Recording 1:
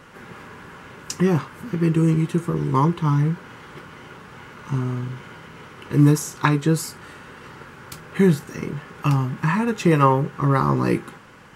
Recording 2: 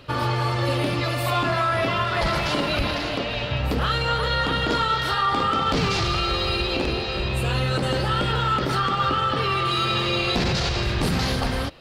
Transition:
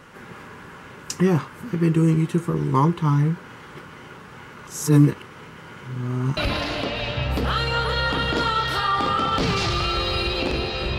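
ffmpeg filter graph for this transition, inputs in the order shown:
-filter_complex "[0:a]apad=whole_dur=10.98,atrim=end=10.98,asplit=2[a][b];[a]atrim=end=4.672[c];[b]atrim=start=4.668:end=6.372,asetpts=PTS-STARTPTS,areverse[d];[1:a]atrim=start=2.708:end=7.32[e];[c][d]acrossfade=d=0.004:c1=hsin:c2=hsin[f];[f][e]acrossfade=d=0.004:c1=hsin:c2=hsin"

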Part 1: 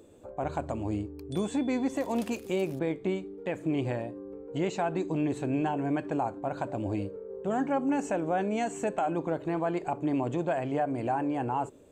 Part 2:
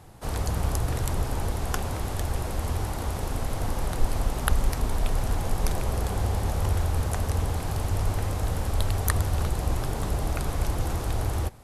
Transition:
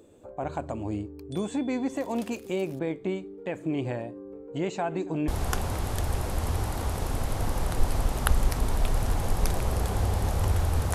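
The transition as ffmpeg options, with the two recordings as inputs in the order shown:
-filter_complex "[0:a]asettb=1/sr,asplit=3[a][b][c];[a]atrim=end=4.074[d];[b]atrim=start=4.07:end=5.28,asetpts=PTS-STARTPTS,afade=t=in:d=0.004:c=qsin,afade=t=out:st=1.206:d=0.004:c=qsin,aecho=1:1:279:0.075,atrim=end_sample=53361[e];[c]atrim=start=5.276[f];[d][e]acrossfade=d=0.004:c1=hsin:c2=qsin[g];[g][f]acrossfade=d=0.004:c1=qsin:c2=hsin,apad=whole_dur=10.94,atrim=end=10.94,atrim=end=5.282[h];[1:a]atrim=start=1.488:end=7.15[i];[h][i]acrossfade=d=0.004:c1=hsin:c2=hsin"

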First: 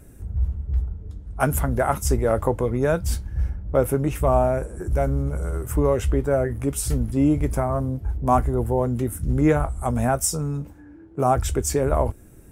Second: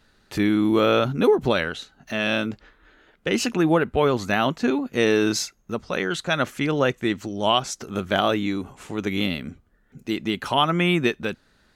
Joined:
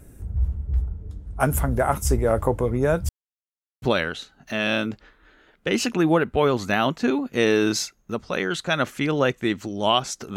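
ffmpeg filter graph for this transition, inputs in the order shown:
-filter_complex "[0:a]apad=whole_dur=10.36,atrim=end=10.36,asplit=2[a][b];[a]atrim=end=3.09,asetpts=PTS-STARTPTS,afade=t=out:st=3.086:d=0.004:c=hsin[c];[b]atrim=start=3.09:end=3.82,asetpts=PTS-STARTPTS,volume=0[d];[1:a]atrim=start=1.42:end=7.96,asetpts=PTS-STARTPTS,afade=t=in:d=0.004:c=hsin[e];[c][d][e]concat=n=3:v=0:a=1"

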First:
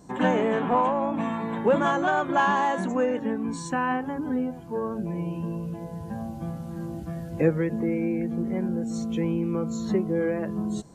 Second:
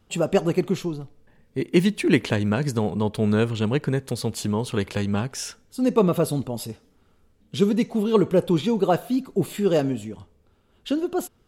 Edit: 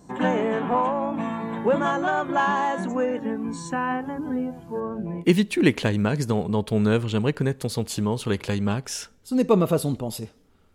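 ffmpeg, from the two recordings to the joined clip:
-filter_complex "[0:a]asettb=1/sr,asplit=3[a][b][c];[a]atrim=end=4.804[d];[b]atrim=start=4.8:end=5.25,asetpts=PTS-STARTPTS,afade=t=in:d=0.004:c=qsin,afade=t=out:st=0.446:d=0.004:c=qsin,bass=f=250:g=0,treble=f=4k:g=-13[e];[c]atrim=start=5.246[f];[d][e]acrossfade=d=0.004:c1=hsin:c2=qsin[g];[g][f]acrossfade=d=0.004:c1=qsin:c2=hsin,apad=whole_dur=10.74,atrim=end=10.74,atrim=end=5.25,asetpts=PTS-STARTPTS[h];[1:a]atrim=start=1.64:end=7.21,asetpts=PTS-STARTPTS[i];[h][i]acrossfade=d=0.08:c1=tri:c2=tri"

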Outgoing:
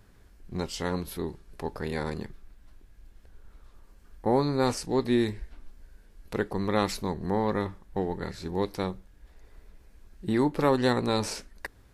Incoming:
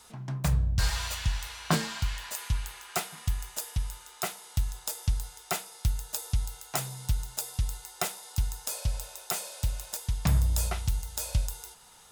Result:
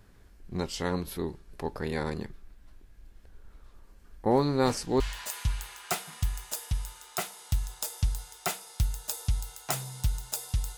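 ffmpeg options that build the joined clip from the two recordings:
-filter_complex "[1:a]asplit=2[a][b];[0:a]apad=whole_dur=10.77,atrim=end=10.77,atrim=end=5.002[c];[b]atrim=start=2.048:end=7.82[d];[a]atrim=start=1.36:end=2.05,asetpts=PTS-STARTPTS,volume=-17.5dB,afade=t=in:d=0.004:c=hsin,afade=t=out:st=0.686:d=0.004:c=hsin,adelay=4310[e];[c][d]acrossfade=d=0.004:c1=hsin:c2=hsin[f];[f][e]amix=inputs=2:normalize=0"

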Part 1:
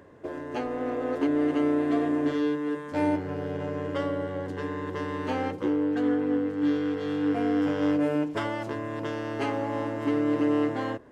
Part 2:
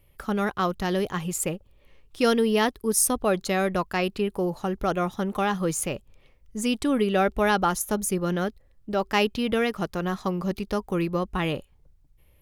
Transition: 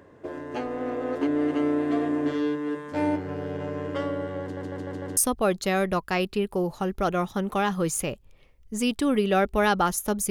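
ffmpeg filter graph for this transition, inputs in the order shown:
-filter_complex "[0:a]apad=whole_dur=10.3,atrim=end=10.3,asplit=5[a][b][c][d][e];[a]atrim=end=4.572[f];[b]atrim=start=4.418:end=4.572[g];[c]atrim=start=4.418:end=4.572[h];[d]atrim=start=4.418:end=4.572[i];[e]atrim=start=4.418:end=4.572[j];[1:a]atrim=start=2.998:end=8.13[k];[f][g]acrossfade=d=0.004:c1=hsin:c2=hsin[l];[l][h]acrossfade=d=0.004:c1=hsin:c2=hsin[m];[m][i]acrossfade=d=0.004:c1=hsin:c2=hsin[n];[n][j]acrossfade=d=0.004:c1=hsin:c2=hsin[o];[o][k]acrossfade=d=0.004:c1=hsin:c2=hsin"

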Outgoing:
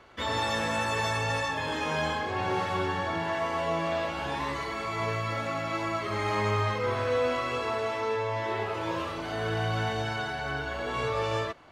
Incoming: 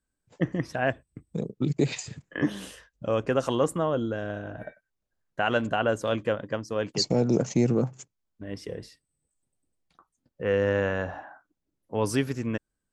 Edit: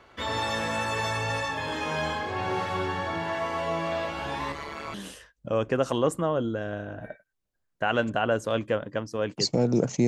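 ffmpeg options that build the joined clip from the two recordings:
-filter_complex "[0:a]asettb=1/sr,asplit=3[a][b][c];[a]atrim=end=4.524[d];[b]atrim=start=4.52:end=4.94,asetpts=PTS-STARTPTS,afade=t=in:d=0.004:c=qsin,afade=t=out:st=0.416:d=0.004:c=qsin,tremolo=f=150:d=0.824[e];[c]atrim=start=4.936[f];[d][e]acrossfade=d=0.004:c1=hsin:c2=qsin[g];[g][f]acrossfade=d=0.004:c1=qsin:c2=hsin,apad=whole_dur=10.07,atrim=end=10.07,atrim=end=4.942[h];[1:a]atrim=start=2.508:end=7.64[i];[h][i]acrossfade=d=0.004:c1=hsin:c2=hsin"

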